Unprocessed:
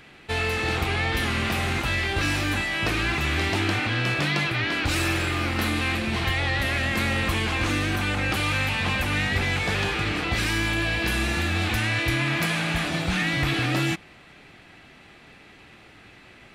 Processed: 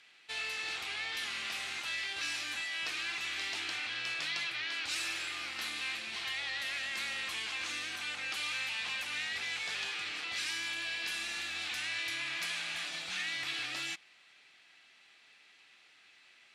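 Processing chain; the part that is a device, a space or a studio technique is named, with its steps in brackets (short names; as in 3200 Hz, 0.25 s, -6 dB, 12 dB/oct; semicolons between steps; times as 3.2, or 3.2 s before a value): piezo pickup straight into a mixer (LPF 5600 Hz 12 dB/oct; differentiator)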